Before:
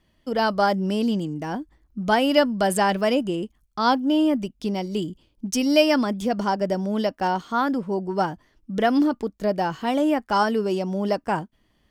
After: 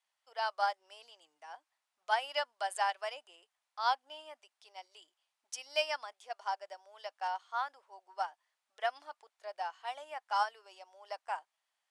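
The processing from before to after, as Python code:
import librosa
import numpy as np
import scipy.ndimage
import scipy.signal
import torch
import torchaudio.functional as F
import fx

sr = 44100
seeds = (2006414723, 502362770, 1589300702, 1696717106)

y = fx.dmg_noise_colour(x, sr, seeds[0], colour='pink', level_db=-65.0)
y = scipy.signal.sosfilt(scipy.signal.ellip(3, 1.0, 50, [740.0, 9900.0], 'bandpass', fs=sr, output='sos'), y)
y = fx.upward_expand(y, sr, threshold_db=-37.0, expansion=1.5)
y = y * librosa.db_to_amplitude(-8.0)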